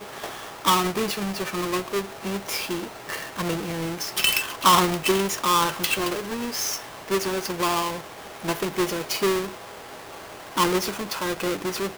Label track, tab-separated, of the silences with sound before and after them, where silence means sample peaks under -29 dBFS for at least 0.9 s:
9.460000	10.570000	silence